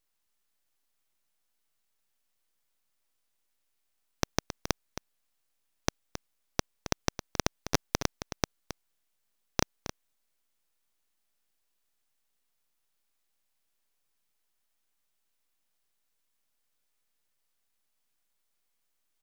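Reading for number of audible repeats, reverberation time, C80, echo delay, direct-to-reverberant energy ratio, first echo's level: 1, none, none, 0.269 s, none, -11.0 dB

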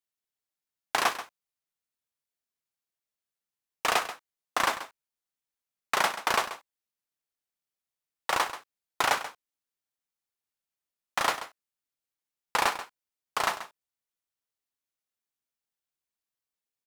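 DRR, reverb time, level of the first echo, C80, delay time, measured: none, none, -13.0 dB, none, 0.134 s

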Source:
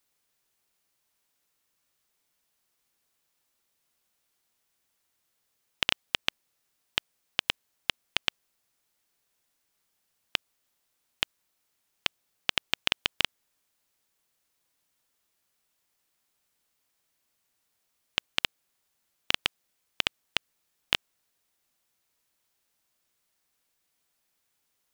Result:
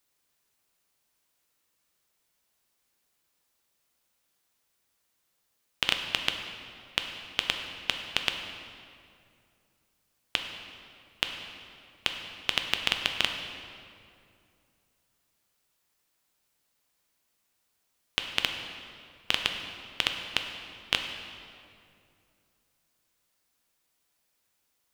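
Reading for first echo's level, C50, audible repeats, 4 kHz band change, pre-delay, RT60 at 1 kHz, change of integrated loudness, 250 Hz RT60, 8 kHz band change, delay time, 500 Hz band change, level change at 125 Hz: none, 5.5 dB, none, +1.0 dB, 7 ms, 2.3 s, +0.5 dB, 2.9 s, +1.0 dB, none, +1.5 dB, +2.0 dB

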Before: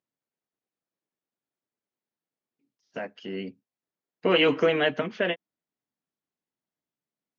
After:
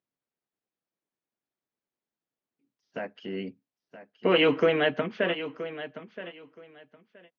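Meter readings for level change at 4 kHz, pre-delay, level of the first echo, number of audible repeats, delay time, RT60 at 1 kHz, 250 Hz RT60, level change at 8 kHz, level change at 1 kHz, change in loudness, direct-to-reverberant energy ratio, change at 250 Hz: -2.0 dB, none, -13.0 dB, 2, 0.973 s, none, none, n/a, -0.5 dB, -2.0 dB, none, 0.0 dB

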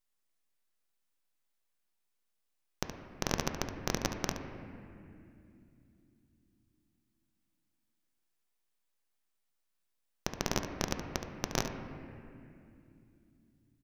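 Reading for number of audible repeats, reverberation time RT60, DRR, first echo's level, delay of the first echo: 1, 2.7 s, 4.0 dB, -10.5 dB, 71 ms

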